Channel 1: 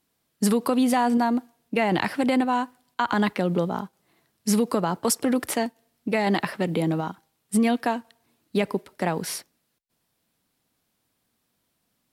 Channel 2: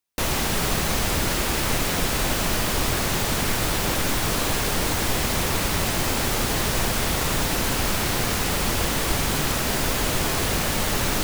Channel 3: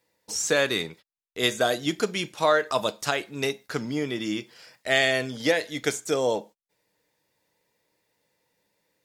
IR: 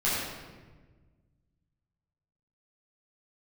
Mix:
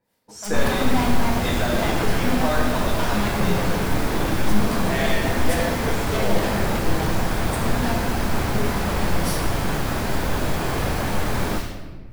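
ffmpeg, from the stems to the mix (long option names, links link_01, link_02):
-filter_complex "[0:a]aeval=exprs='(tanh(25.1*val(0)+0.65)-tanh(0.65))/25.1':channel_layout=same,acrossover=split=500[link_01][link_02];[link_01]aeval=exprs='val(0)*(1-1/2+1/2*cos(2*PI*3.5*n/s))':channel_layout=same[link_03];[link_02]aeval=exprs='val(0)*(1-1/2-1/2*cos(2*PI*3.5*n/s))':channel_layout=same[link_04];[link_03][link_04]amix=inputs=2:normalize=0,volume=1dB,asplit=2[link_05][link_06];[link_06]volume=-6.5dB[link_07];[1:a]adelay=350,volume=3dB,asplit=2[link_08][link_09];[link_09]volume=-20dB[link_10];[2:a]volume=-2dB,asplit=2[link_11][link_12];[link_12]volume=-14dB[link_13];[link_08][link_11]amix=inputs=2:normalize=0,lowpass=1600,alimiter=limit=-16dB:level=0:latency=1:release=242,volume=0dB[link_14];[3:a]atrim=start_sample=2205[link_15];[link_07][link_10][link_13]amix=inputs=3:normalize=0[link_16];[link_16][link_15]afir=irnorm=-1:irlink=0[link_17];[link_05][link_14][link_17]amix=inputs=3:normalize=0"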